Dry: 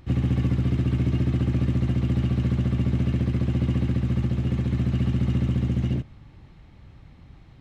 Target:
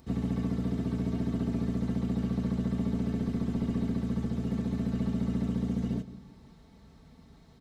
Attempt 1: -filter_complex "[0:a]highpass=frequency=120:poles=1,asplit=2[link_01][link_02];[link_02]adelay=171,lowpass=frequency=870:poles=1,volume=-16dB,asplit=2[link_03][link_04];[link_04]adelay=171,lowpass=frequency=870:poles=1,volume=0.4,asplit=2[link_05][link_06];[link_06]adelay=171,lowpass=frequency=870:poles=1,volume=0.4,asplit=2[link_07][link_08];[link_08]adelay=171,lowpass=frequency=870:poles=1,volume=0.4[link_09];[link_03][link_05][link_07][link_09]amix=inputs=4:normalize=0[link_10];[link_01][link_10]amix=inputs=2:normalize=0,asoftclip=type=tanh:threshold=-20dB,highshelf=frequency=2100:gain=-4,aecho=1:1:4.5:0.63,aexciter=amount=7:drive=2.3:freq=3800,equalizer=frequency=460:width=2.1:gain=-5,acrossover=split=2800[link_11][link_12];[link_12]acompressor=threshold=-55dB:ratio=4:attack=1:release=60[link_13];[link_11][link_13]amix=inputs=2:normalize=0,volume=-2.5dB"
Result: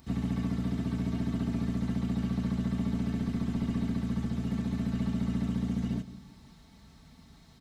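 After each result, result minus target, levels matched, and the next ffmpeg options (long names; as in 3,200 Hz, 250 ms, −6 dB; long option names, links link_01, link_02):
500 Hz band −4.0 dB; 4,000 Hz band +3.5 dB
-filter_complex "[0:a]highpass=frequency=120:poles=1,asplit=2[link_01][link_02];[link_02]adelay=171,lowpass=frequency=870:poles=1,volume=-16dB,asplit=2[link_03][link_04];[link_04]adelay=171,lowpass=frequency=870:poles=1,volume=0.4,asplit=2[link_05][link_06];[link_06]adelay=171,lowpass=frequency=870:poles=1,volume=0.4,asplit=2[link_07][link_08];[link_08]adelay=171,lowpass=frequency=870:poles=1,volume=0.4[link_09];[link_03][link_05][link_07][link_09]amix=inputs=4:normalize=0[link_10];[link_01][link_10]amix=inputs=2:normalize=0,asoftclip=type=tanh:threshold=-20dB,highshelf=frequency=2100:gain=-4,aecho=1:1:4.5:0.63,aexciter=amount=7:drive=2.3:freq=3800,equalizer=frequency=460:width=2.1:gain=2,acrossover=split=2800[link_11][link_12];[link_12]acompressor=threshold=-55dB:ratio=4:attack=1:release=60[link_13];[link_11][link_13]amix=inputs=2:normalize=0,volume=-2.5dB"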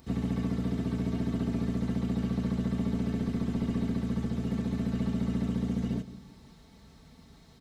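4,000 Hz band +3.0 dB
-filter_complex "[0:a]highpass=frequency=120:poles=1,asplit=2[link_01][link_02];[link_02]adelay=171,lowpass=frequency=870:poles=1,volume=-16dB,asplit=2[link_03][link_04];[link_04]adelay=171,lowpass=frequency=870:poles=1,volume=0.4,asplit=2[link_05][link_06];[link_06]adelay=171,lowpass=frequency=870:poles=1,volume=0.4,asplit=2[link_07][link_08];[link_08]adelay=171,lowpass=frequency=870:poles=1,volume=0.4[link_09];[link_03][link_05][link_07][link_09]amix=inputs=4:normalize=0[link_10];[link_01][link_10]amix=inputs=2:normalize=0,asoftclip=type=tanh:threshold=-20dB,highshelf=frequency=2100:gain=-11.5,aecho=1:1:4.5:0.63,aexciter=amount=7:drive=2.3:freq=3800,equalizer=frequency=460:width=2.1:gain=2,acrossover=split=2800[link_11][link_12];[link_12]acompressor=threshold=-55dB:ratio=4:attack=1:release=60[link_13];[link_11][link_13]amix=inputs=2:normalize=0,volume=-2.5dB"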